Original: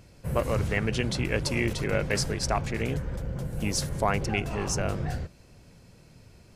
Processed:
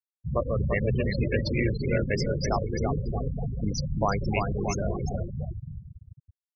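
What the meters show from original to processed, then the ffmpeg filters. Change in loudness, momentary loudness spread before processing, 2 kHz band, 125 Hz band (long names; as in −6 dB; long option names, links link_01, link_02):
+0.5 dB, 7 LU, −2.5 dB, +2.0 dB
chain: -af "aecho=1:1:340|629|874.6|1083|1261:0.631|0.398|0.251|0.158|0.1,afftfilt=real='re*gte(hypot(re,im),0.1)':imag='im*gte(hypot(re,im),0.1)':win_size=1024:overlap=0.75"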